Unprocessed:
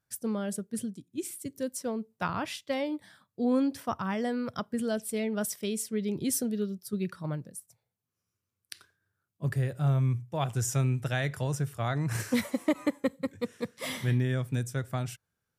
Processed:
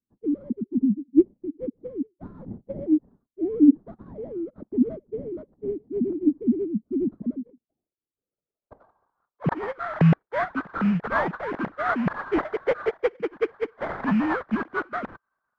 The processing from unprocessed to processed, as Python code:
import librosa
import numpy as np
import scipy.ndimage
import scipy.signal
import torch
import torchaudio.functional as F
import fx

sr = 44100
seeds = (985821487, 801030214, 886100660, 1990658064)

y = fx.sine_speech(x, sr)
y = fx.sample_hold(y, sr, seeds[0], rate_hz=2700.0, jitter_pct=20)
y = fx.filter_sweep_lowpass(y, sr, from_hz=240.0, to_hz=1500.0, start_s=7.54, end_s=9.67, q=2.2)
y = y * 10.0 ** (5.5 / 20.0)